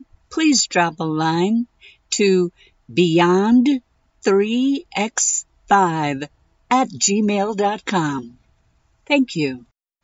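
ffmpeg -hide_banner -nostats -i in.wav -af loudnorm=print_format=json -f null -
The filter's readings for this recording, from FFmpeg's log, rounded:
"input_i" : "-18.9",
"input_tp" : "-3.2",
"input_lra" : "4.6",
"input_thresh" : "-29.8",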